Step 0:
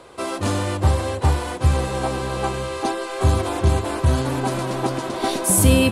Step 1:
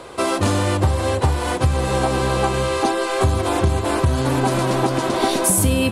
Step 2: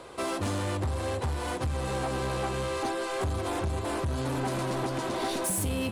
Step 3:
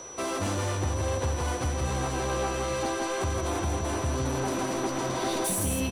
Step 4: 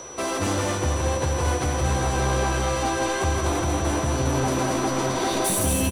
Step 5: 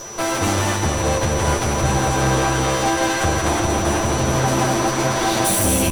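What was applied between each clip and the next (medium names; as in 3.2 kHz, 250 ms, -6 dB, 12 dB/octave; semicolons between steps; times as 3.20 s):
compression 6:1, threshold -22 dBFS, peak gain reduction 12 dB; trim +7.5 dB
saturation -16.5 dBFS, distortion -12 dB; trim -8.5 dB
delay 165 ms -4 dB; whistle 5.9 kHz -42 dBFS
doubling 14 ms -12.5 dB; on a send: delay 229 ms -6 dB; on the sum: trim +4.5 dB
comb filter that takes the minimum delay 9 ms; trim +6.5 dB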